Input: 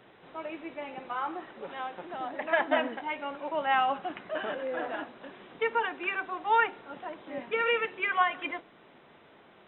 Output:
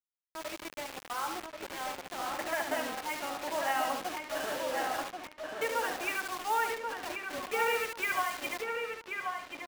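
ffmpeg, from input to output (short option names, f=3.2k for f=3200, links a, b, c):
-filter_complex "[0:a]alimiter=limit=-18.5dB:level=0:latency=1:release=241,asplit=2[a][b];[b]aecho=0:1:72|144|216:0.447|0.125|0.035[c];[a][c]amix=inputs=2:normalize=0,acrusher=bits=5:mix=0:aa=0.000001,lowshelf=f=210:g=-6,asplit=2[d][e];[e]adelay=1084,lowpass=f=3k:p=1,volume=-4dB,asplit=2[f][g];[g]adelay=1084,lowpass=f=3k:p=1,volume=0.21,asplit=2[h][i];[i]adelay=1084,lowpass=f=3k:p=1,volume=0.21[j];[f][h][j]amix=inputs=3:normalize=0[k];[d][k]amix=inputs=2:normalize=0,volume=-3dB"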